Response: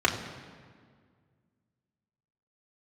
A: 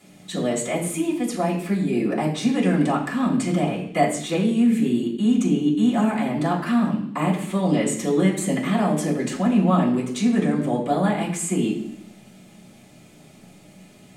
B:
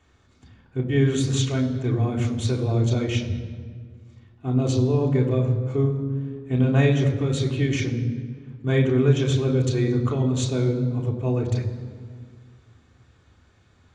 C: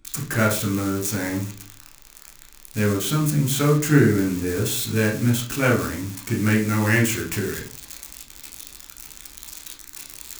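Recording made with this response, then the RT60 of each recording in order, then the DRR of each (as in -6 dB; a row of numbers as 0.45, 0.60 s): B; 0.70, 1.8, 0.45 s; -10.0, -2.0, -1.5 dB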